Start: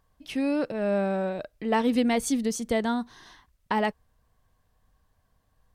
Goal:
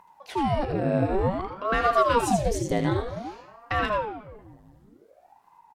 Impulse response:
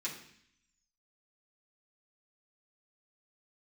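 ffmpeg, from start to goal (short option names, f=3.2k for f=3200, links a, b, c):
-filter_complex "[0:a]lowshelf=f=230:g=10,acompressor=mode=upward:threshold=-47dB:ratio=2.5,asplit=2[a][b];[b]adelay=185,lowpass=f=1.8k:p=1,volume=-15dB,asplit=2[c][d];[d]adelay=185,lowpass=f=1.8k:p=1,volume=0.55,asplit=2[e][f];[f]adelay=185,lowpass=f=1.8k:p=1,volume=0.55,asplit=2[g][h];[h]adelay=185,lowpass=f=1.8k:p=1,volume=0.55,asplit=2[i][j];[j]adelay=185,lowpass=f=1.8k:p=1,volume=0.55[k];[a][c][e][g][i][k]amix=inputs=6:normalize=0,asplit=2[l][m];[1:a]atrim=start_sample=2205,adelay=75[n];[m][n]afir=irnorm=-1:irlink=0,volume=-5.5dB[o];[l][o]amix=inputs=2:normalize=0,aeval=exprs='val(0)*sin(2*PI*500*n/s+500*0.9/0.54*sin(2*PI*0.54*n/s))':c=same"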